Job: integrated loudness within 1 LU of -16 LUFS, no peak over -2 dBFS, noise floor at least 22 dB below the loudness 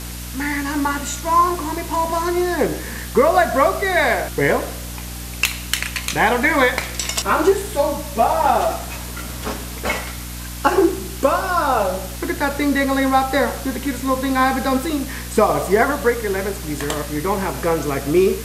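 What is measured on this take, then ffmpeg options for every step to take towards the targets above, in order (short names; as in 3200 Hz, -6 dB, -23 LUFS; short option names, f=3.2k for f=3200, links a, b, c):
hum 60 Hz; harmonics up to 300 Hz; hum level -29 dBFS; noise floor -30 dBFS; noise floor target -42 dBFS; loudness -19.5 LUFS; peak -2.5 dBFS; loudness target -16.0 LUFS
-> -af "bandreject=f=60:t=h:w=6,bandreject=f=120:t=h:w=6,bandreject=f=180:t=h:w=6,bandreject=f=240:t=h:w=6,bandreject=f=300:t=h:w=6"
-af "afftdn=nr=12:nf=-30"
-af "volume=3.5dB,alimiter=limit=-2dB:level=0:latency=1"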